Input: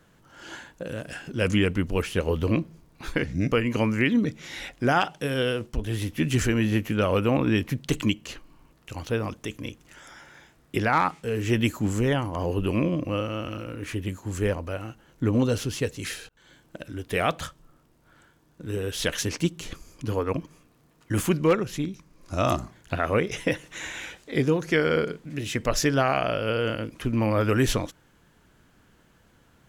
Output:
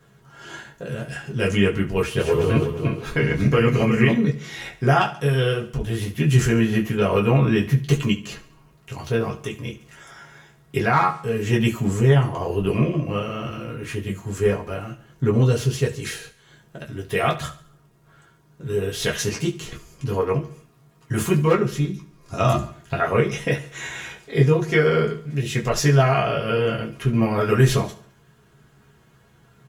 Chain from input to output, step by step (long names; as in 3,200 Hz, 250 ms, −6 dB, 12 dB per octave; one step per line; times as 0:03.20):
0:01.99–0:04.11: feedback delay that plays each chunk backwards 179 ms, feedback 52%, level −3 dB
repeating echo 70 ms, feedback 46%, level −16 dB
convolution reverb, pre-delay 3 ms, DRR −3 dB
level −1.5 dB